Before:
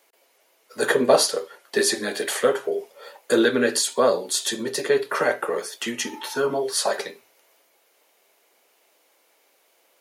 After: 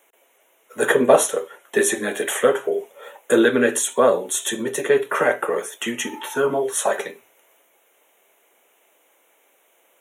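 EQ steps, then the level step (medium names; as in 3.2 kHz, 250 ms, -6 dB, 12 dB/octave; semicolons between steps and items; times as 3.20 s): Butterworth band-stop 4.7 kHz, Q 1.7; +3.0 dB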